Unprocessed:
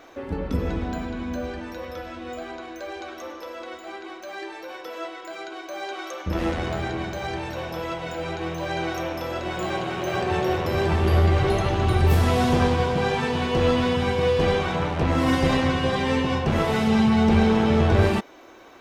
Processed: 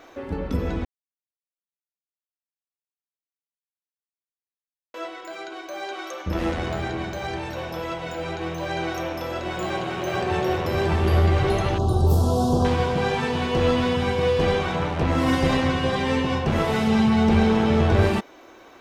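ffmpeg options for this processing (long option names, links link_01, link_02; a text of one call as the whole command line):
ffmpeg -i in.wav -filter_complex "[0:a]asettb=1/sr,asplit=3[link_01][link_02][link_03];[link_01]atrim=end=11.784[link_04];[link_02]atrim=start=11.78:end=12.65,asetpts=PTS-STARTPTS,afade=type=in:duration=0.004:curve=qsin,afade=type=out:start_time=0.866:duration=0.004:curve=qsin,asuperstop=centerf=2100:order=4:qfactor=0.61[link_05];[link_03]atrim=start=12.646[link_06];[link_04][link_05]acrossfade=duration=0.004:curve1=hsin:curve2=qsin[link_07];[link_07][link_06]acrossfade=duration=0.004:curve1=qsin:curve2=hsin,asplit=3[link_08][link_09][link_10];[link_08]atrim=end=0.85,asetpts=PTS-STARTPTS,afade=type=out:start_time=0.846:duration=0.004:curve=hsin[link_11];[link_09]atrim=start=0.85:end=4.94,asetpts=PTS-STARTPTS,volume=0[link_12];[link_10]atrim=start=4.94,asetpts=PTS-STARTPTS,afade=type=in:duration=0.004:curve=hsin[link_13];[link_11][link_12][link_13]concat=n=3:v=0:a=1" out.wav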